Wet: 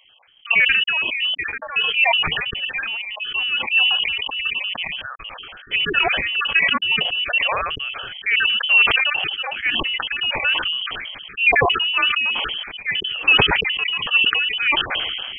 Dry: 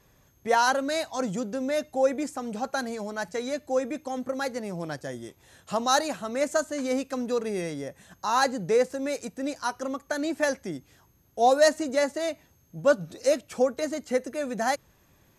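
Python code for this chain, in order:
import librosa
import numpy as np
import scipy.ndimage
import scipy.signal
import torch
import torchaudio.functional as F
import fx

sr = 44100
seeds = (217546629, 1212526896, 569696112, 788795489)

y = fx.spec_dropout(x, sr, seeds[0], share_pct=39)
y = fx.freq_invert(y, sr, carrier_hz=3200)
y = fx.sustainer(y, sr, db_per_s=26.0)
y = F.gain(torch.from_numpy(y), 7.0).numpy()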